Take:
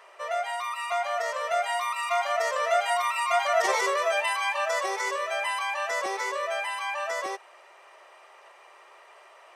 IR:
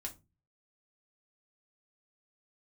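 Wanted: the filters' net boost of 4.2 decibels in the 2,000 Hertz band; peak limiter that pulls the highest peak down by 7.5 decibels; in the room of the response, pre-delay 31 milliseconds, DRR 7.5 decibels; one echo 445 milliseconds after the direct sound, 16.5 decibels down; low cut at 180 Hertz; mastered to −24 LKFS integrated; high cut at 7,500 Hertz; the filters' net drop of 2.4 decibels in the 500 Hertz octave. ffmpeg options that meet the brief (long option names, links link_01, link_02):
-filter_complex "[0:a]highpass=180,lowpass=7500,equalizer=frequency=500:width_type=o:gain=-4,equalizer=frequency=2000:width_type=o:gain=5,alimiter=limit=-18.5dB:level=0:latency=1,aecho=1:1:445:0.15,asplit=2[link_01][link_02];[1:a]atrim=start_sample=2205,adelay=31[link_03];[link_02][link_03]afir=irnorm=-1:irlink=0,volume=-5dB[link_04];[link_01][link_04]amix=inputs=2:normalize=0,volume=2.5dB"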